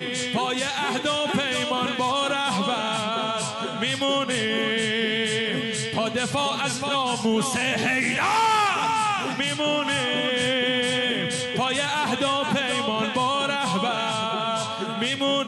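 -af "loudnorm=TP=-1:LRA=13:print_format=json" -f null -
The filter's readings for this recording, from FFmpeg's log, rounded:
"input_i" : "-23.4",
"input_tp" : "-11.2",
"input_lra" : "2.0",
"input_thresh" : "-33.4",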